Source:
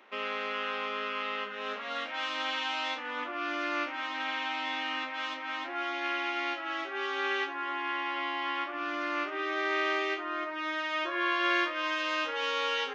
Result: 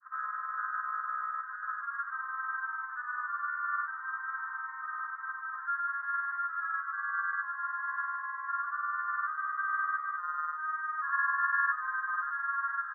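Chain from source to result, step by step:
Butterworth high-pass 1,100 Hz 72 dB per octave
granular cloud 91 ms, grains 20 per second, pitch spread up and down by 0 semitones
Chebyshev low-pass filter 1,700 Hz, order 8
repeating echo 735 ms, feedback 57%, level −17.5 dB
level +5.5 dB

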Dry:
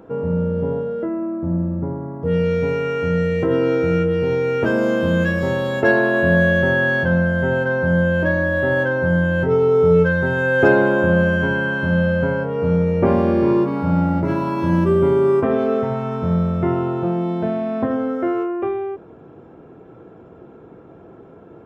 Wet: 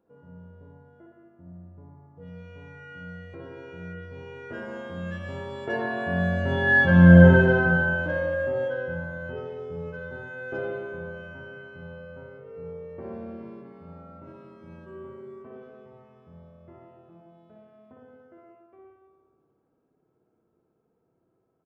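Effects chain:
source passing by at 0:07.15, 9 m/s, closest 2.5 metres
spring reverb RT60 1.4 s, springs 57 ms, chirp 40 ms, DRR −1 dB
downsampling to 22,050 Hz

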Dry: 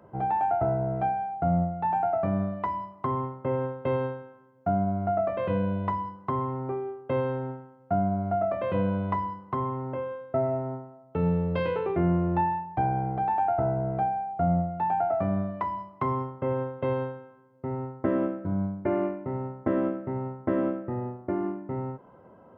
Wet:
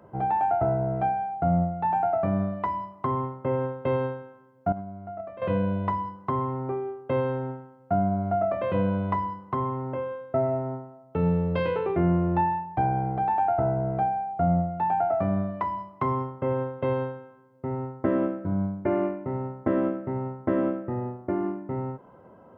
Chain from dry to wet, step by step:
0:04.72–0:05.42: noise gate −22 dBFS, range −13 dB
level +1.5 dB

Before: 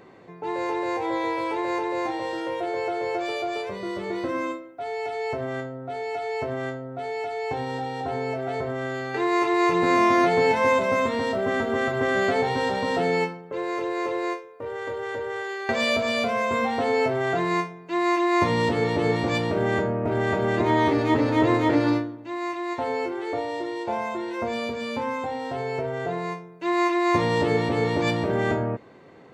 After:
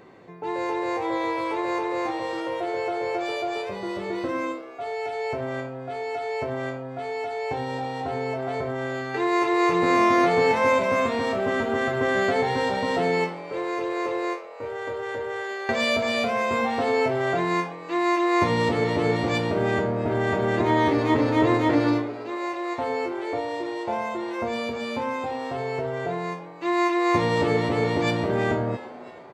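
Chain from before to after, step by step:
echo with shifted repeats 333 ms, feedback 50%, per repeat +130 Hz, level −17 dB

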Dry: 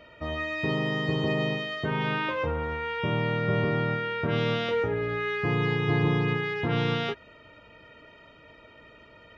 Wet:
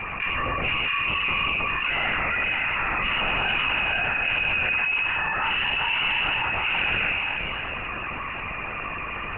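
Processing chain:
high-pass filter 210 Hz 12 dB per octave
on a send at −5 dB: convolution reverb RT60 1.7 s, pre-delay 63 ms
on the sum: voice inversion scrambler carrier 3,000 Hz
linear-prediction vocoder at 8 kHz whisper
envelope flattener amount 70%

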